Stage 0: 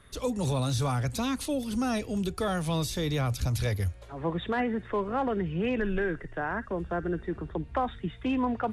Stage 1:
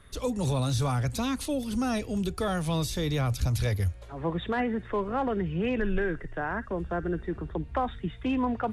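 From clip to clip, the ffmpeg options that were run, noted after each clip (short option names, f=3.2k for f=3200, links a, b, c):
-af "lowshelf=f=72:g=5.5"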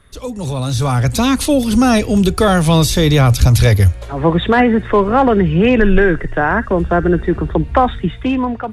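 -af "dynaudnorm=f=270:g=7:m=13dB,volume=4dB"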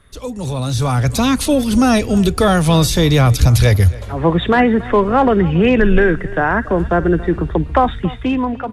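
-filter_complex "[0:a]asplit=2[a][b];[b]adelay=279.9,volume=-19dB,highshelf=f=4k:g=-6.3[c];[a][c]amix=inputs=2:normalize=0,volume=-1dB"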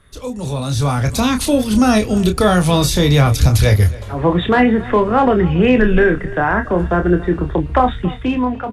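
-filter_complex "[0:a]asplit=2[a][b];[b]adelay=28,volume=-7dB[c];[a][c]amix=inputs=2:normalize=0,volume=-1dB"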